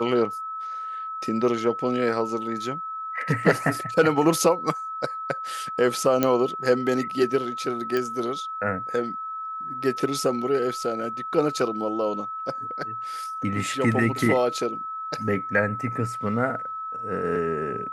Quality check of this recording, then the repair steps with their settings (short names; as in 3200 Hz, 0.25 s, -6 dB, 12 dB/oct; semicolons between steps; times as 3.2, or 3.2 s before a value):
tone 1300 Hz -30 dBFS
6.23 pop -7 dBFS
7.97 pop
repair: de-click; notch 1300 Hz, Q 30